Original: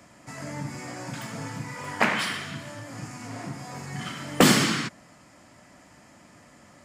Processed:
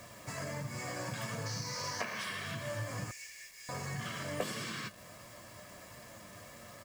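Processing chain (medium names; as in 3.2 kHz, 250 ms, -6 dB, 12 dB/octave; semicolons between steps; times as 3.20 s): 1.45–2.23 s: band noise 4.2–6.4 kHz -39 dBFS; compression 12:1, threshold -36 dBFS, peak gain reduction 24 dB; flange 1.5 Hz, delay 8.3 ms, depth 2 ms, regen +59%; 3.11–3.69 s: rippled Chebyshev high-pass 1.7 kHz, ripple 6 dB; bit crusher 10-bit; comb 1.8 ms, depth 51%; trim +4.5 dB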